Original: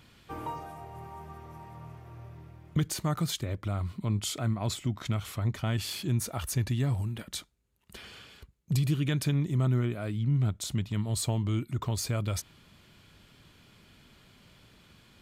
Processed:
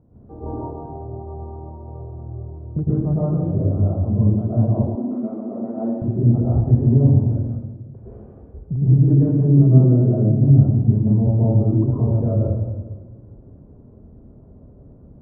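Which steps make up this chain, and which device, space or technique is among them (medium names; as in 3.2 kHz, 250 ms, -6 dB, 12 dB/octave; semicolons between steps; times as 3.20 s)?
next room (low-pass 650 Hz 24 dB/octave; reverberation RT60 1.3 s, pre-delay 102 ms, DRR -9.5 dB); 4.95–6.02 s: Chebyshev high-pass 230 Hz, order 4; trim +3.5 dB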